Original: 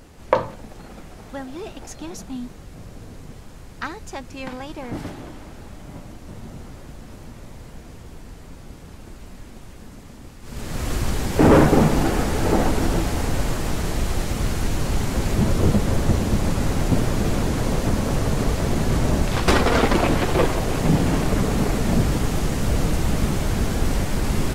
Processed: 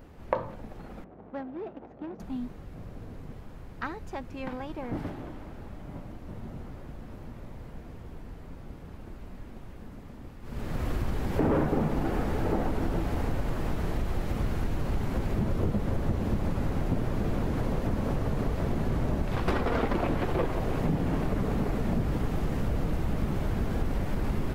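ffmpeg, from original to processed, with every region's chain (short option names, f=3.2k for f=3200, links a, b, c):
-filter_complex "[0:a]asettb=1/sr,asplit=3[a][b][c];[a]atrim=end=1.044[d];[b]atrim=start=1.04:end=2.2,asetpts=PTS-STARTPTS,afade=t=in:d=0.004:c=qsin,afade=t=out:st=1.156:d=0.004:c=qsin,adynamicsmooth=sensitivity=3.5:basefreq=630,highpass=190,lowpass=7.7k,aeval=exprs='val(0)+0.00158*(sin(2*PI*50*n/s)+sin(2*PI*2*50*n/s)/2+sin(2*PI*3*50*n/s)/3+sin(2*PI*4*50*n/s)/4+sin(2*PI*5*50*n/s)/5)':c=same[e];[c]atrim=start=2.196[f];[d][e]acrossfade=d=0.004:c1=hsin:c2=qsin[g];[g][f]acrossfade=d=0.004:c1=qsin:c2=hsin,equalizer=f=7.7k:w=0.47:g=-14.5,acompressor=threshold=-22dB:ratio=3,volume=-3dB"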